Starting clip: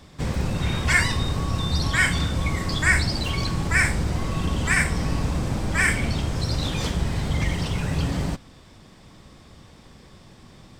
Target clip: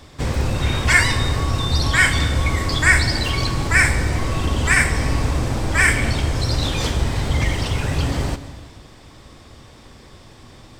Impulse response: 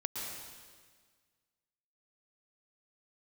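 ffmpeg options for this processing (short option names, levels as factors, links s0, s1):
-filter_complex "[0:a]equalizer=f=180:t=o:w=0.37:g=-11,asplit=2[s0][s1];[1:a]atrim=start_sample=2205[s2];[s1][s2]afir=irnorm=-1:irlink=0,volume=0.251[s3];[s0][s3]amix=inputs=2:normalize=0,volume=1.5"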